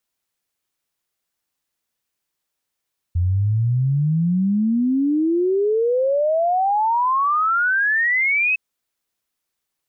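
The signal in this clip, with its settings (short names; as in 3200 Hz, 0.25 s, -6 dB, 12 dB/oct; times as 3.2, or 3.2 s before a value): log sweep 85 Hz -> 2600 Hz 5.41 s -15.5 dBFS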